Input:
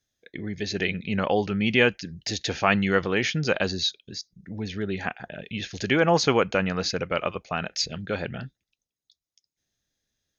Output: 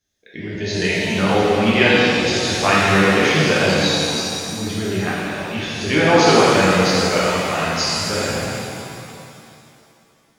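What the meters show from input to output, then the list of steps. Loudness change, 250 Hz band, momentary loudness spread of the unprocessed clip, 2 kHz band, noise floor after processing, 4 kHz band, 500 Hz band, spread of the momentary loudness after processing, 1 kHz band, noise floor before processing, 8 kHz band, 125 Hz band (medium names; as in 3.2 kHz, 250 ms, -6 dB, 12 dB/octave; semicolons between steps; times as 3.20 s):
+8.5 dB, +8.5 dB, 16 LU, +9.0 dB, -56 dBFS, +9.5 dB, +8.5 dB, 13 LU, +10.0 dB, under -85 dBFS, no reading, +8.0 dB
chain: pitch-shifted reverb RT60 2.6 s, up +7 st, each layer -8 dB, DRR -8 dB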